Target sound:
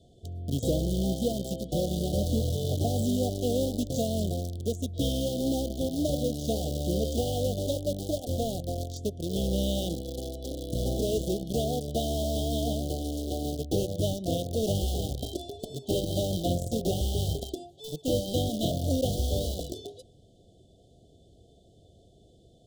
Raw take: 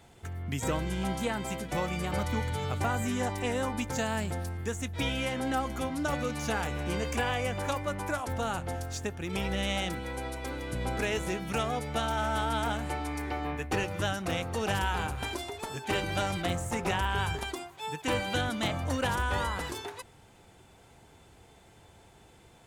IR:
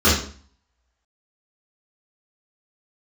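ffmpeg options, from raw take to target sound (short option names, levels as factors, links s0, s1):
-filter_complex "[0:a]aemphasis=mode=reproduction:type=50fm,asplit=2[s0][s1];[s1]acrusher=bits=4:mix=0:aa=0.000001,volume=0.631[s2];[s0][s2]amix=inputs=2:normalize=0,asuperstop=centerf=1500:order=20:qfactor=0.61"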